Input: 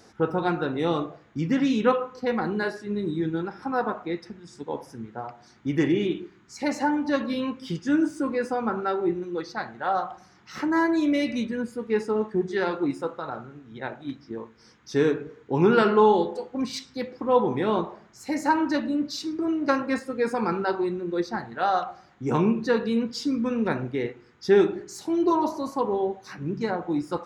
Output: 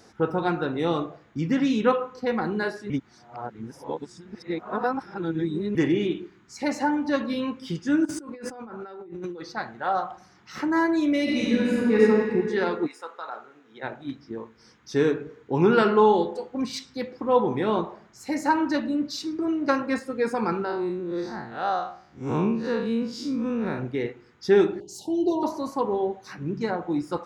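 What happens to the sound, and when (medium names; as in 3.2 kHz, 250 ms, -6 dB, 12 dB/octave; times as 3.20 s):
2.90–5.75 s: reverse
8.05–9.42 s: compressor with a negative ratio -38 dBFS
11.23–12.01 s: reverb throw, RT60 2.3 s, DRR -7 dB
12.86–13.82 s: high-pass 1.2 kHz -> 370 Hz
20.64–23.79 s: spectral blur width 113 ms
24.80–25.43 s: Chebyshev band-stop 910–2800 Hz, order 5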